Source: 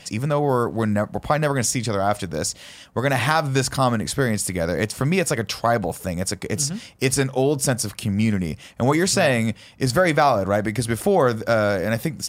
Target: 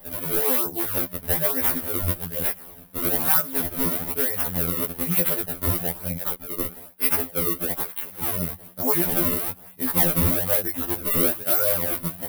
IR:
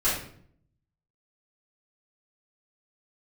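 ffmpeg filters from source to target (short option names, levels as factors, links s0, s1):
-filter_complex "[0:a]aeval=exprs='val(0)+0.00562*(sin(2*PI*60*n/s)+sin(2*PI*2*60*n/s)/2+sin(2*PI*3*60*n/s)/3+sin(2*PI*4*60*n/s)/4+sin(2*PI*5*60*n/s)/5)':c=same,asettb=1/sr,asplit=3[s0][s1][s2];[s0]atrim=end=6.184[s3];[s1]atrim=start=6.18:end=8.23,asetpts=PTS-STARTPTS,afade=t=in:d=0.004:c=qsin,afade=t=out:st=2.046:d=0.004:c=qsin,highpass=400[s4];[s2]atrim=start=8.226[s5];[s3][s4]acrossfade=d=0.004:c1=hsin:c2=qsin[s6];[s6][s5]acrossfade=d=0.004:c1=qsin:c2=hsin,acrusher=samples=31:mix=1:aa=0.000001:lfo=1:lforange=49.6:lforate=1.1,aexciter=amount=12.6:drive=4.2:freq=9800,afftfilt=real='re*2*eq(mod(b,4),0)':imag='im*2*eq(mod(b,4),0)':win_size=2048:overlap=0.75,volume=0.562"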